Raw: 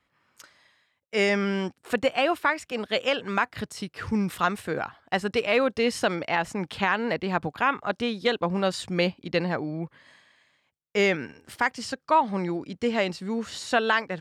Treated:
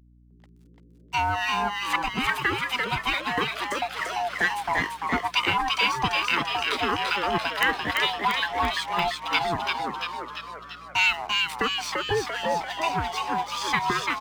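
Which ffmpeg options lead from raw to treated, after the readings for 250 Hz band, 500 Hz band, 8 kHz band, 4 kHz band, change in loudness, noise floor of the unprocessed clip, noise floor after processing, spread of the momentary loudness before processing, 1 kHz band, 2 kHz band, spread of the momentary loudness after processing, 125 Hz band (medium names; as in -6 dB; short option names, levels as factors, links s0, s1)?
-7.0 dB, -6.0 dB, +3.0 dB, +6.5 dB, +1.5 dB, -74 dBFS, -54 dBFS, 8 LU, +3.5 dB, +3.5 dB, 6 LU, -3.0 dB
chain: -filter_complex "[0:a]afftfilt=real='real(if(lt(b,1008),b+24*(1-2*mod(floor(b/24),2)),b),0)':imag='imag(if(lt(b,1008),b+24*(1-2*mod(floor(b/24),2)),b),0)':win_size=2048:overlap=0.75,highpass=f=71:p=1,acrossover=split=1200|4700[s0][s1][s2];[s0]acompressor=threshold=0.0158:ratio=4[s3];[s1]acompressor=threshold=0.0447:ratio=4[s4];[s2]acompressor=threshold=0.00251:ratio=4[s5];[s3][s4][s5]amix=inputs=3:normalize=0,acrossover=split=210[s6][s7];[s6]alimiter=level_in=5.01:limit=0.0631:level=0:latency=1:release=147,volume=0.2[s8];[s8][s7]amix=inputs=2:normalize=0,acontrast=82,acrossover=split=1200[s9][s10];[s9]aeval=exprs='val(0)*(1-1/2+1/2*cos(2*PI*2.3*n/s))':c=same[s11];[s10]aeval=exprs='val(0)*(1-1/2-1/2*cos(2*PI*2.3*n/s))':c=same[s12];[s11][s12]amix=inputs=2:normalize=0,aeval=exprs='sgn(val(0))*max(abs(val(0))-0.00355,0)':c=same,aeval=exprs='val(0)+0.00126*(sin(2*PI*60*n/s)+sin(2*PI*2*60*n/s)/2+sin(2*PI*3*60*n/s)/3+sin(2*PI*4*60*n/s)/4+sin(2*PI*5*60*n/s)/5)':c=same,aeval=exprs='(mod(4.47*val(0)+1,2)-1)/4.47':c=same,asplit=9[s13][s14][s15][s16][s17][s18][s19][s20][s21];[s14]adelay=341,afreqshift=110,volume=0.668[s22];[s15]adelay=682,afreqshift=220,volume=0.389[s23];[s16]adelay=1023,afreqshift=330,volume=0.224[s24];[s17]adelay=1364,afreqshift=440,volume=0.13[s25];[s18]adelay=1705,afreqshift=550,volume=0.0759[s26];[s19]adelay=2046,afreqshift=660,volume=0.0437[s27];[s20]adelay=2387,afreqshift=770,volume=0.0254[s28];[s21]adelay=2728,afreqshift=880,volume=0.0148[s29];[s13][s22][s23][s24][s25][s26][s27][s28][s29]amix=inputs=9:normalize=0,volume=1.58"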